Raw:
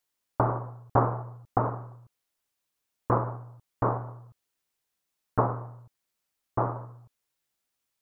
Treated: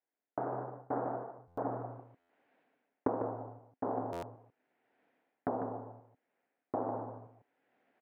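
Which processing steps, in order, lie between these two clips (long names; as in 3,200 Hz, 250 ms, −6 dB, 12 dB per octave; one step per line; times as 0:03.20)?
source passing by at 0:01.82, 21 m/s, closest 19 metres
camcorder AGC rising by 19 dB per second
parametric band 1,000 Hz −3 dB 0.38 octaves
reversed playback
downward compressor 5 to 1, threshold −37 dBFS, peak gain reduction 26.5 dB
reversed playback
loudspeaker in its box 240–2,000 Hz, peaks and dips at 260 Hz +9 dB, 470 Hz +4 dB, 720 Hz +6 dB, 1,200 Hz −8 dB
on a send: single-tap delay 149 ms −7 dB
on the sum: buffer that repeats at 0:01.47/0:02.19/0:04.12, samples 512, times 8
highs frequency-modulated by the lows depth 0.16 ms
level +2.5 dB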